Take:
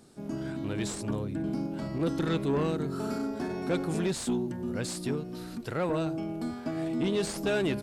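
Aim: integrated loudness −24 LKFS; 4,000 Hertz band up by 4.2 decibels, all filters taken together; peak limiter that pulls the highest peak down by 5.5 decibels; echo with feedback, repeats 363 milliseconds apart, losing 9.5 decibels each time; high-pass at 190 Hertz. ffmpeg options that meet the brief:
ffmpeg -i in.wav -af "highpass=190,equalizer=frequency=4000:width_type=o:gain=5,alimiter=limit=-22dB:level=0:latency=1,aecho=1:1:363|726|1089|1452:0.335|0.111|0.0365|0.012,volume=9dB" out.wav

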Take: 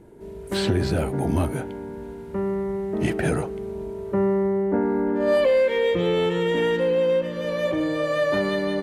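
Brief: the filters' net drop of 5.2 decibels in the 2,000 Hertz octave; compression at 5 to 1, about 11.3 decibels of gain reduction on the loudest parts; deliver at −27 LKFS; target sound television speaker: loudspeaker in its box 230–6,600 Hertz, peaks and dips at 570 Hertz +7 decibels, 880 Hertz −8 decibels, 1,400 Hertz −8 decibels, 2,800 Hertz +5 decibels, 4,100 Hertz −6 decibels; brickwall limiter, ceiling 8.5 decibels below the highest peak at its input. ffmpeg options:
ffmpeg -i in.wav -af "equalizer=frequency=2000:width_type=o:gain=-5,acompressor=threshold=-30dB:ratio=5,alimiter=level_in=4dB:limit=-24dB:level=0:latency=1,volume=-4dB,highpass=frequency=230:width=0.5412,highpass=frequency=230:width=1.3066,equalizer=frequency=570:width_type=q:width=4:gain=7,equalizer=frequency=880:width_type=q:width=4:gain=-8,equalizer=frequency=1400:width_type=q:width=4:gain=-8,equalizer=frequency=2800:width_type=q:width=4:gain=5,equalizer=frequency=4100:width_type=q:width=4:gain=-6,lowpass=frequency=6600:width=0.5412,lowpass=frequency=6600:width=1.3066,volume=7dB" out.wav

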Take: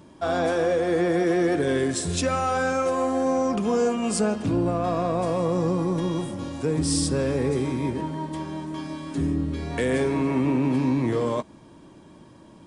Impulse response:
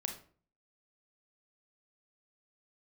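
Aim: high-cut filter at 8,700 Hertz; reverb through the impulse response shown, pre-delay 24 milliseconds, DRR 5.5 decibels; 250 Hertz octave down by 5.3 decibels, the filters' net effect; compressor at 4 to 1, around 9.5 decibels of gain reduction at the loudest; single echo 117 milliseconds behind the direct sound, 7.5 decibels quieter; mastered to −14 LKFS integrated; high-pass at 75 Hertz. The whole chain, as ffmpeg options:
-filter_complex "[0:a]highpass=75,lowpass=8700,equalizer=frequency=250:width_type=o:gain=-7,acompressor=threshold=-33dB:ratio=4,aecho=1:1:117:0.422,asplit=2[link_01][link_02];[1:a]atrim=start_sample=2205,adelay=24[link_03];[link_02][link_03]afir=irnorm=-1:irlink=0,volume=-6dB[link_04];[link_01][link_04]amix=inputs=2:normalize=0,volume=20dB"

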